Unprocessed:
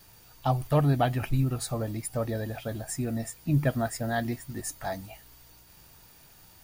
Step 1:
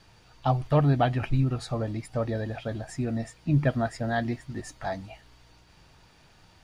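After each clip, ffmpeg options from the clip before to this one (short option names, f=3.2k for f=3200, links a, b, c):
-af "lowpass=4.5k,volume=1.5dB"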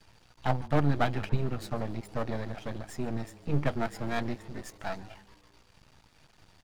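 -filter_complex "[0:a]aeval=exprs='max(val(0),0)':c=same,asplit=6[a][b][c][d][e][f];[b]adelay=143,afreqshift=99,volume=-21dB[g];[c]adelay=286,afreqshift=198,volume=-25.6dB[h];[d]adelay=429,afreqshift=297,volume=-30.2dB[i];[e]adelay=572,afreqshift=396,volume=-34.7dB[j];[f]adelay=715,afreqshift=495,volume=-39.3dB[k];[a][g][h][i][j][k]amix=inputs=6:normalize=0"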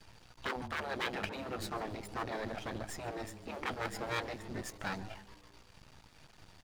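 -af "afftfilt=real='re*lt(hypot(re,im),0.0891)':imag='im*lt(hypot(re,im),0.0891)':win_size=1024:overlap=0.75,volume=1.5dB"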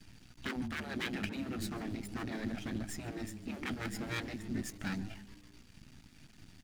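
-af "equalizer=f=250:t=o:w=1:g=9,equalizer=f=500:t=o:w=1:g=-10,equalizer=f=1k:t=o:w=1:g=-10,equalizer=f=4k:t=o:w=1:g=-3,volume=2dB"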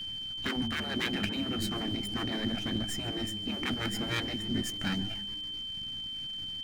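-af "aeval=exprs='val(0)+0.00891*sin(2*PI*3100*n/s)':c=same,volume=5dB"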